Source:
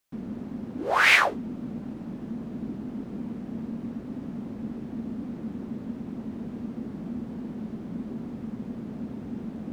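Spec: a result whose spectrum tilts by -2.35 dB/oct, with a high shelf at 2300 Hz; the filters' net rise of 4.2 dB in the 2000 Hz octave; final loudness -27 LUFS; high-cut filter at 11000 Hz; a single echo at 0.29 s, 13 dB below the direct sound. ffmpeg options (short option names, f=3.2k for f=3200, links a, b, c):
-af "lowpass=11k,equalizer=f=2k:t=o:g=7.5,highshelf=f=2.3k:g=-5,aecho=1:1:290:0.224"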